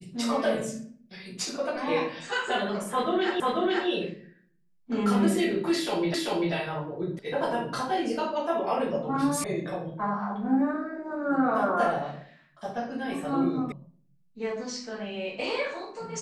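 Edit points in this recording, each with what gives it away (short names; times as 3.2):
3.4 repeat of the last 0.49 s
6.14 repeat of the last 0.39 s
7.19 sound cut off
9.44 sound cut off
13.72 sound cut off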